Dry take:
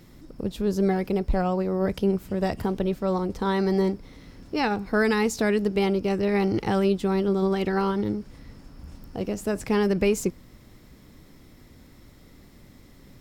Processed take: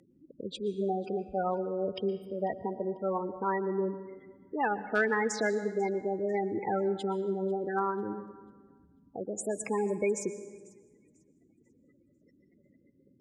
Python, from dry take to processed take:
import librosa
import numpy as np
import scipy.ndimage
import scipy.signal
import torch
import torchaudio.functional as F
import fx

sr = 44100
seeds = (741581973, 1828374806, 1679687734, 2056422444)

p1 = fx.spec_gate(x, sr, threshold_db=-15, keep='strong')
p2 = fx.weighting(p1, sr, curve='A')
p3 = np.clip(10.0 ** (17.0 / 20.0) * p2, -1.0, 1.0) / 10.0 ** (17.0 / 20.0)
p4 = fx.peak_eq(p3, sr, hz=9700.0, db=13.5, octaves=1.1)
p5 = fx.env_lowpass_down(p4, sr, base_hz=2500.0, full_db=-20.0)
p6 = p5 + fx.echo_wet_highpass(p5, sr, ms=494, feedback_pct=31, hz=3200.0, wet_db=-22, dry=0)
p7 = fx.rev_plate(p6, sr, seeds[0], rt60_s=1.5, hf_ratio=0.65, predelay_ms=105, drr_db=12.5)
y = p7 * 10.0 ** (-1.5 / 20.0)